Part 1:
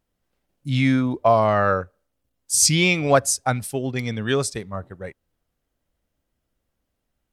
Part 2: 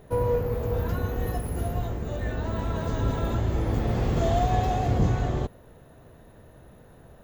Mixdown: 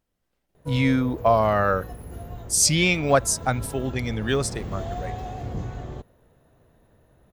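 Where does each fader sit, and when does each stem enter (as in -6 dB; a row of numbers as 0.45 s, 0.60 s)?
-2.0 dB, -8.5 dB; 0.00 s, 0.55 s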